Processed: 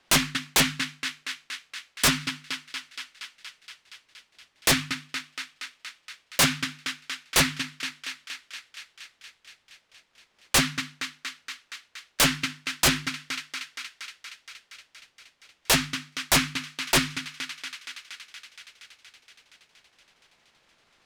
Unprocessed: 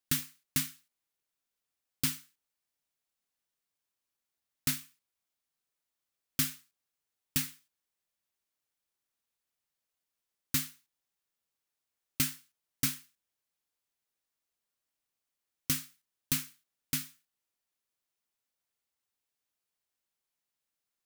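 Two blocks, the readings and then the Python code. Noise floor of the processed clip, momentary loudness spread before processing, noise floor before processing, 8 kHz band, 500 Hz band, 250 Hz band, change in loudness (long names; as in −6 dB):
−69 dBFS, 13 LU, below −85 dBFS, +10.0 dB, +25.5 dB, +11.0 dB, +7.0 dB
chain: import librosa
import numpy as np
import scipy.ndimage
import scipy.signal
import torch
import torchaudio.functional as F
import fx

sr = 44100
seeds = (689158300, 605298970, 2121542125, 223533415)

y = scipy.signal.sosfilt(scipy.signal.butter(2, 3200.0, 'lowpass', fs=sr, output='sos'), x)
y = fx.echo_thinned(y, sr, ms=235, feedback_pct=77, hz=520.0, wet_db=-17.5)
y = fx.transient(y, sr, attack_db=-4, sustain_db=-8)
y = fx.fold_sine(y, sr, drive_db=19, ceiling_db=-22.5)
y = fx.hum_notches(y, sr, base_hz=50, count=7)
y = y * librosa.db_to_amplitude(8.0)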